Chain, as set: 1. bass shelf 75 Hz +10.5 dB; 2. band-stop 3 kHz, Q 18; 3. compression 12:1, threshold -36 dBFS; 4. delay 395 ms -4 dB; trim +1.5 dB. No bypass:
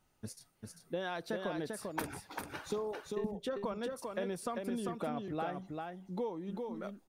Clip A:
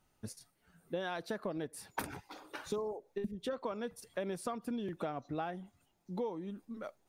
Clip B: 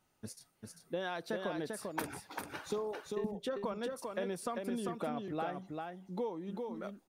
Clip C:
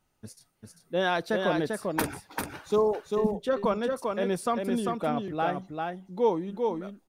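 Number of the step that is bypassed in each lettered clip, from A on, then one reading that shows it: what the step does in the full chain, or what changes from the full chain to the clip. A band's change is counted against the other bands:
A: 4, loudness change -1.5 LU; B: 1, 125 Hz band -1.5 dB; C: 3, mean gain reduction 7.0 dB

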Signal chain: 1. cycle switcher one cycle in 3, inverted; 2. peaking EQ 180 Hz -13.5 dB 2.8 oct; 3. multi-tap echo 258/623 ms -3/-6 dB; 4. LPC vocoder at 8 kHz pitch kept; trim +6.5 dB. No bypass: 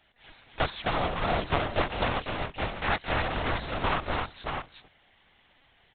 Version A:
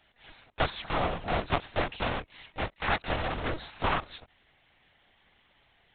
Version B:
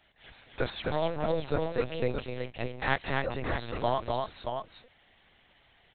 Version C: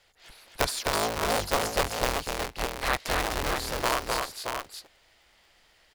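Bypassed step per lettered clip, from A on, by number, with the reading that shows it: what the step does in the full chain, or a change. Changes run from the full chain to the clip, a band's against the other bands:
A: 3, crest factor change +2.0 dB; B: 1, 500 Hz band +6.0 dB; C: 4, 125 Hz band -5.0 dB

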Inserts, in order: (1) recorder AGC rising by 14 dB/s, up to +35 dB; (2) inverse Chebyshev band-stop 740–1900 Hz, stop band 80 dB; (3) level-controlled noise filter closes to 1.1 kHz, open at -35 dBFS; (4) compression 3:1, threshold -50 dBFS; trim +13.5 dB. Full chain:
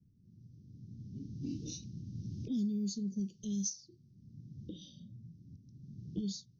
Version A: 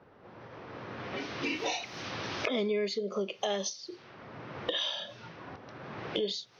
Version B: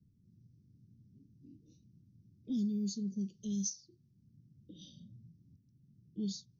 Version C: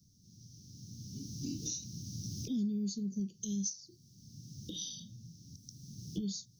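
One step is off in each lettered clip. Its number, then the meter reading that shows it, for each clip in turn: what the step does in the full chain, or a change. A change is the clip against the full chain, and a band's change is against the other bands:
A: 2, 500 Hz band +23.5 dB; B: 1, momentary loudness spread change +1 LU; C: 3, 4 kHz band +5.5 dB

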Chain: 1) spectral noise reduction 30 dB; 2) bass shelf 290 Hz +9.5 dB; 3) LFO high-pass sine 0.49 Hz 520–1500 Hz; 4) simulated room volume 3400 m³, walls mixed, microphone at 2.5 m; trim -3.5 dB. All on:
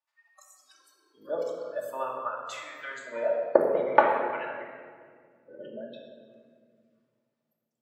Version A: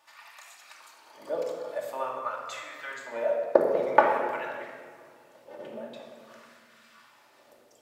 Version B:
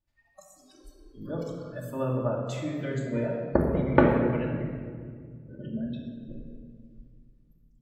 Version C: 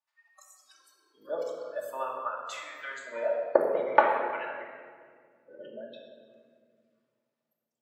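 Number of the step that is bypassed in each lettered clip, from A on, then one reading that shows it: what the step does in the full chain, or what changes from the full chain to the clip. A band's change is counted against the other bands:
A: 1, 4 kHz band +1.5 dB; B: 3, 125 Hz band +27.5 dB; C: 2, 250 Hz band -3.5 dB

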